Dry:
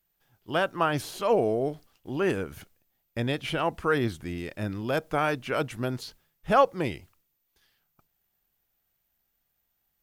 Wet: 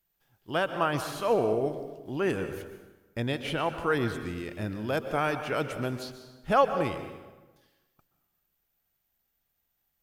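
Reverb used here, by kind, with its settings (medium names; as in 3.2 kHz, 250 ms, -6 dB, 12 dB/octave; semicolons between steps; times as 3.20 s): plate-style reverb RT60 1.2 s, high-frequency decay 0.7×, pre-delay 110 ms, DRR 8.5 dB; trim -2 dB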